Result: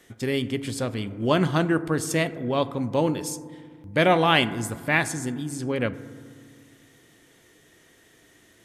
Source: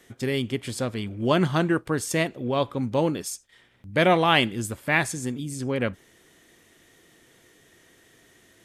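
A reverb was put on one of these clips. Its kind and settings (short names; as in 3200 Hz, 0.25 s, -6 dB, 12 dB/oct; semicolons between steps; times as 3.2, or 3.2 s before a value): FDN reverb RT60 1.9 s, low-frequency decay 1.4×, high-frequency decay 0.25×, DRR 13.5 dB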